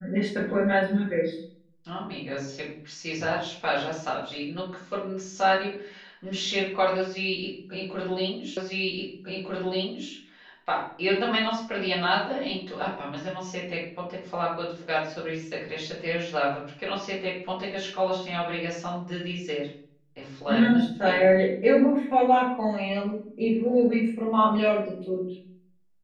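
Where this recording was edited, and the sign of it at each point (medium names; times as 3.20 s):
8.57 s: repeat of the last 1.55 s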